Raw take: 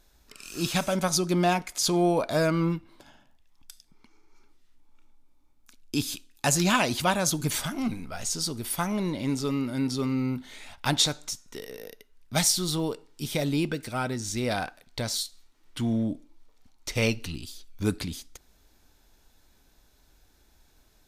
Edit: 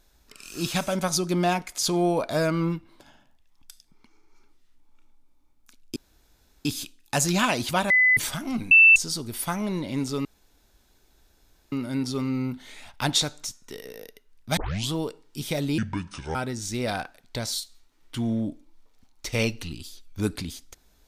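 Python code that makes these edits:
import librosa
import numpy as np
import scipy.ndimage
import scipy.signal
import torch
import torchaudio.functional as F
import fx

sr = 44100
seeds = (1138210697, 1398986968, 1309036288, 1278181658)

y = fx.edit(x, sr, fx.insert_room_tone(at_s=5.96, length_s=0.69),
    fx.bleep(start_s=7.21, length_s=0.27, hz=2010.0, db=-15.0),
    fx.bleep(start_s=8.02, length_s=0.25, hz=2660.0, db=-10.0),
    fx.insert_room_tone(at_s=9.56, length_s=1.47),
    fx.tape_start(start_s=12.41, length_s=0.35),
    fx.speed_span(start_s=13.62, length_s=0.36, speed=0.63), tone=tone)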